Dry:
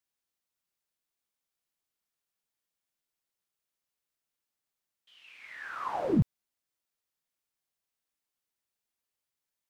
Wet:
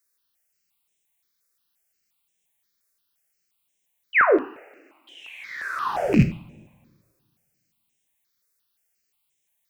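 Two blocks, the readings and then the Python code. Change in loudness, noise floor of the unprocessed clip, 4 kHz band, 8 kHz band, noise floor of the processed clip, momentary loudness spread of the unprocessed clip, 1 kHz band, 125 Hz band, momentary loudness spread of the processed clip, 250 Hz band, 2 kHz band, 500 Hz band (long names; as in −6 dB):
+9.5 dB, below −85 dBFS, +12.5 dB, can't be measured, −75 dBFS, 18 LU, +12.5 dB, +8.0 dB, 21 LU, +8.5 dB, +20.5 dB, +14.0 dB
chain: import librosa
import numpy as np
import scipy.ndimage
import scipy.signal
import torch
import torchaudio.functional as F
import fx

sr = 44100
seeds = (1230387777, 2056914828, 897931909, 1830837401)

y = fx.rattle_buzz(x, sr, strikes_db=-33.0, level_db=-28.0)
y = fx.high_shelf(y, sr, hz=2600.0, db=7.5)
y = fx.spec_paint(y, sr, seeds[0], shape='fall', start_s=4.13, length_s=0.25, low_hz=260.0, high_hz=3100.0, level_db=-23.0)
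y = fx.rev_double_slope(y, sr, seeds[1], early_s=0.49, late_s=1.9, knee_db=-21, drr_db=5.5)
y = fx.phaser_held(y, sr, hz=5.7, low_hz=830.0, high_hz=4500.0)
y = y * 10.0 ** (8.0 / 20.0)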